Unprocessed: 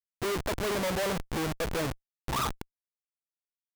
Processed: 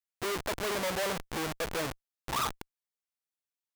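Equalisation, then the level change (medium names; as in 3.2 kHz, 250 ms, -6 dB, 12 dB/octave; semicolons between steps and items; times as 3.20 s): bass shelf 350 Hz -8 dB; 0.0 dB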